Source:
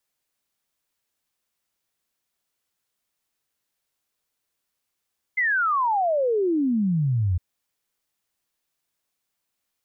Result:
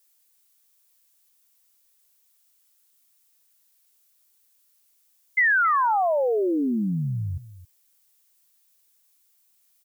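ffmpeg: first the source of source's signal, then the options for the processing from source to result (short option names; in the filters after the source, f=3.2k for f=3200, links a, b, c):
-f lavfi -i "aevalsrc='0.112*clip(min(t,2.01-t)/0.01,0,1)*sin(2*PI*2100*2.01/log(84/2100)*(exp(log(84/2100)*t/2.01)-1))':d=2.01:s=44100"
-af "highpass=f=180:p=1,crystalizer=i=3.5:c=0,aecho=1:1:271:0.158"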